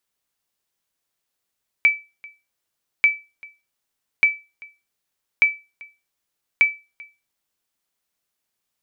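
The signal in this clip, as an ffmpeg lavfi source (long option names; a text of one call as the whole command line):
ffmpeg -f lavfi -i "aevalsrc='0.447*(sin(2*PI*2310*mod(t,1.19))*exp(-6.91*mod(t,1.19)/0.27)+0.0562*sin(2*PI*2310*max(mod(t,1.19)-0.39,0))*exp(-6.91*max(mod(t,1.19)-0.39,0)/0.27))':duration=5.95:sample_rate=44100" out.wav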